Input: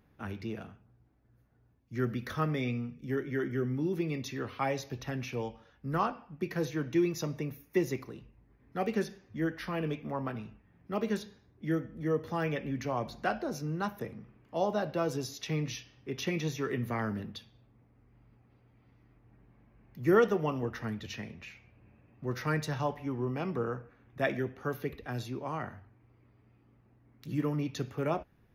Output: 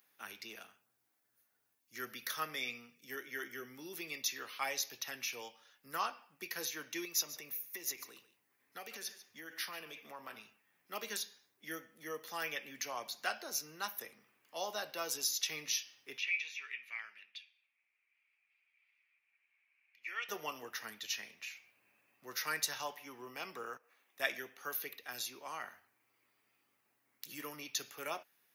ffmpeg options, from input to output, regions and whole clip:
-filter_complex "[0:a]asettb=1/sr,asplit=3[s0][s1][s2];[s0]atrim=end=7.054[s3];[s1]atrim=start=7.05:end=10.38,asetpts=PTS-STARTPTS,afade=t=in:d=0.004:c=qsin,afade=t=out:st=3.326:d=0.004:c=qsin,acompressor=threshold=0.02:ratio=5:attack=3.2:release=140:knee=1:detection=peak,aecho=1:1:142:0.178,atrim=end_sample=146853[s4];[s2]atrim=start=10.376[s5];[s3][s4]acrossfade=d=0.004:c1=hsin:c2=qsin[s6];[s6][s5]acrossfade=d=0.004:c1=qsin:c2=hsin,asettb=1/sr,asplit=3[s7][s8][s9];[s7]atrim=end=16.184[s10];[s8]atrim=start=16.18:end=20.29,asetpts=PTS-STARTPTS,afade=t=in:d=0.004:c=qsin,afade=t=out:st=4.106:d=0.004:c=qsin,lowpass=f=2400:t=q:w=7.7,aderivative[s11];[s9]atrim=start=20.286[s12];[s10][s11]acrossfade=d=0.004:c1=hsin:c2=qsin[s13];[s13][s12]acrossfade=d=0.004:c1=qsin:c2=hsin,asettb=1/sr,asplit=3[s14][s15][s16];[s14]atrim=end=23.774[s17];[s15]atrim=start=23.77:end=24.2,asetpts=PTS-STARTPTS,afade=t=in:d=0.004:c=qsin,afade=t=out:st=0.426:d=0.004:c=qsin,highpass=360,equalizer=f=1500:w=4.8:g=-8,acompressor=threshold=0.00141:ratio=6:attack=3.2:release=140:knee=1:detection=peak[s18];[s16]atrim=start=24.196[s19];[s17][s18]acrossfade=d=0.004:c1=hsin:c2=qsin[s20];[s20][s19]acrossfade=d=0.004:c1=qsin:c2=hsin,highpass=f=240:p=1,aderivative,volume=3.55"

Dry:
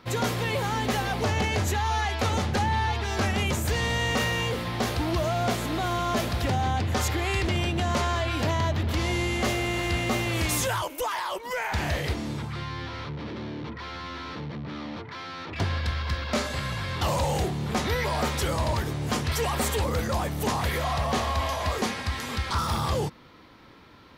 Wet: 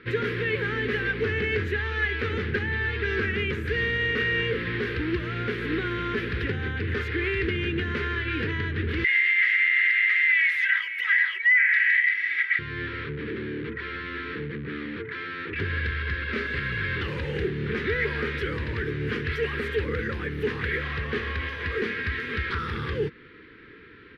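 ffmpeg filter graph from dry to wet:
-filter_complex "[0:a]asettb=1/sr,asplit=3[s0][s1][s2];[s0]atrim=end=9.044[s3];[s1]atrim=start=9.04:end=12.59,asetpts=PTS-STARTPTS,afade=t=in:d=0.004:c=qsin,afade=t=out:st=3.546:d=0.004:c=qsin,highpass=f=2000:t=q:w=11,aecho=1:1:3.1:0.58,atrim=end_sample=156555[s4];[s2]atrim=start=12.586[s5];[s3][s4]acrossfade=d=0.004:c1=hsin:c2=qsin[s6];[s6][s5]acrossfade=d=0.004:c1=qsin:c2=hsin,equalizer=f=11000:t=o:w=0.69:g=7.5,alimiter=limit=0.0944:level=0:latency=1:release=245,firequalizer=gain_entry='entry(240,0);entry(440,10);entry(640,-24);entry(1600,11);entry(7100,-29)':delay=0.05:min_phase=1"

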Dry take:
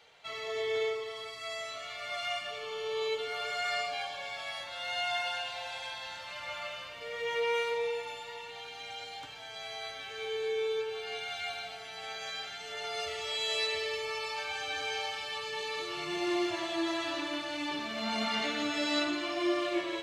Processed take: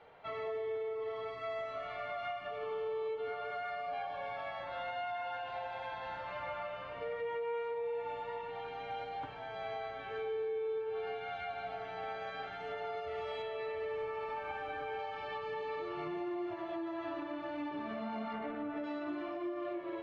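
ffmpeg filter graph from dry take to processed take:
-filter_complex "[0:a]asettb=1/sr,asplit=3[s0][s1][s2];[s0]atrim=end=13.424[s3];[s1]atrim=start=13.42:end=14.99,asetpts=PTS-STARTPTS,afade=t=in:d=0.004:c=qsin,afade=t=out:st=1.566:d=0.004:c=qsin,lowpass=3300,acrusher=bits=6:mix=0:aa=0.5[s4];[s2]atrim=start=14.986[s5];[s3][s4]acrossfade=d=0.004:c1=hsin:c2=qsin[s6];[s6][s5]acrossfade=d=0.004:c1=qsin:c2=hsin,asettb=1/sr,asplit=3[s7][s8][s9];[s7]atrim=end=18.334[s10];[s8]atrim=start=18.33:end=18.84,asetpts=PTS-STARTPTS,afade=t=in:d=0.004:c=qsin,afade=t=out:st=0.506:d=0.004:c=qsin,highpass=55,adynamicsmooth=sensitivity=3:basefreq=1500[s11];[s9]atrim=start=18.836[s12];[s10][s11]acrossfade=d=0.004:c1=hsin:c2=qsin[s13];[s13][s12]acrossfade=d=0.004:c1=qsin:c2=hsin,lowpass=1200,acompressor=threshold=0.0126:ratio=6,alimiter=level_in=5.01:limit=0.0631:level=0:latency=1:release=348,volume=0.2,volume=2.11"

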